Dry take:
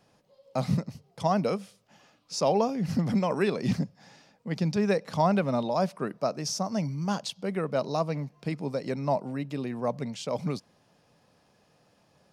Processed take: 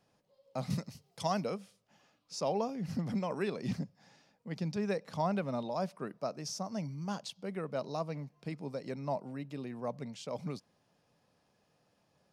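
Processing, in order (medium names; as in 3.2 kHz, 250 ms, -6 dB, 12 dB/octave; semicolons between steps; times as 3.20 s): 0.70–1.44 s: treble shelf 2 kHz +11 dB; trim -8.5 dB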